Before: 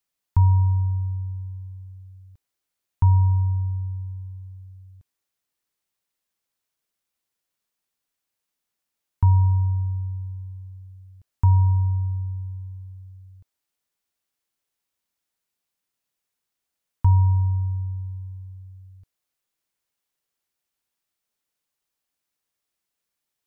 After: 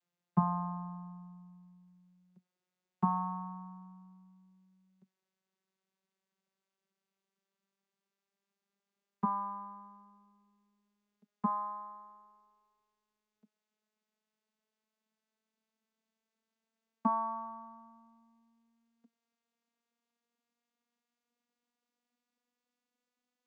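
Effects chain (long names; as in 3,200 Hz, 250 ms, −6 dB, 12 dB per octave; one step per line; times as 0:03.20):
vocoder with a gliding carrier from F3, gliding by +6 semitones
level −8.5 dB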